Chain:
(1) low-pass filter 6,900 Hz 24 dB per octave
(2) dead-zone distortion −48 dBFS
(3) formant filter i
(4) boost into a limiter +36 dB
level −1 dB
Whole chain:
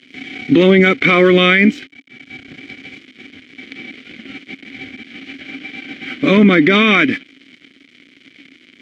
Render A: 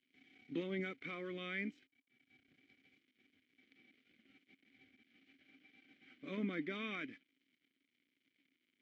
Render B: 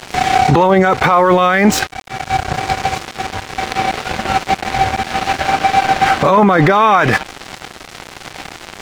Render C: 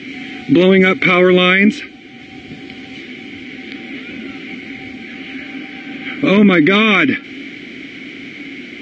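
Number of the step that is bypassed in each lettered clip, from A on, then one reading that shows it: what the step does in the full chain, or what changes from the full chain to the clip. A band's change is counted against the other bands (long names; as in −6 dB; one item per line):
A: 4, change in crest factor +5.5 dB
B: 3, 1 kHz band +14.5 dB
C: 2, distortion level −23 dB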